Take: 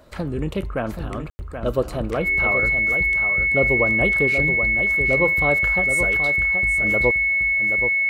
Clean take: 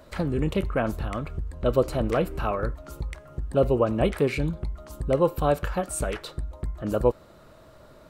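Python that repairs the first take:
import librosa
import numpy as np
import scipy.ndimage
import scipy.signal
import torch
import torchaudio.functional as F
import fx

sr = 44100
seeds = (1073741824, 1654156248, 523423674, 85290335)

y = fx.notch(x, sr, hz=2200.0, q=30.0)
y = fx.fix_ambience(y, sr, seeds[0], print_start_s=0.0, print_end_s=0.5, start_s=1.3, end_s=1.39)
y = fx.fix_echo_inverse(y, sr, delay_ms=777, level_db=-8.0)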